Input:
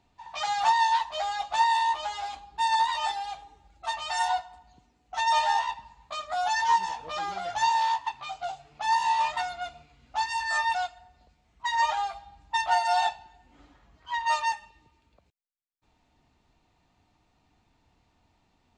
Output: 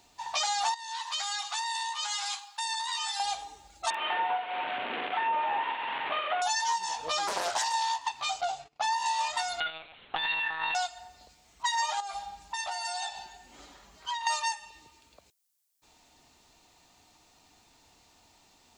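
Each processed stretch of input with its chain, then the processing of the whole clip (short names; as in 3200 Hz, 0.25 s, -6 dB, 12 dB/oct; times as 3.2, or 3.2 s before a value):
0.74–3.2 steep high-pass 950 Hz + compressor, threshold -39 dBFS
3.9–6.42 delta modulation 16 kbps, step -32.5 dBFS + HPF 290 Hz + doubler 45 ms -7.5 dB
7.27–7.74 compressor 4:1, threshold -26 dBFS + Doppler distortion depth 0.6 ms
8.41–9.06 LPF 3200 Hz 6 dB/oct + gate -55 dBFS, range -24 dB
9.6–10.75 low shelf 370 Hz -9.5 dB + monotone LPC vocoder at 8 kHz 160 Hz + negative-ratio compressor -35 dBFS
12–14.27 compressor 12:1, threshold -38 dBFS + comb 5.1 ms, depth 40%
whole clip: tone controls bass -9 dB, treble +14 dB; compressor 6:1, threshold -34 dBFS; gain +6.5 dB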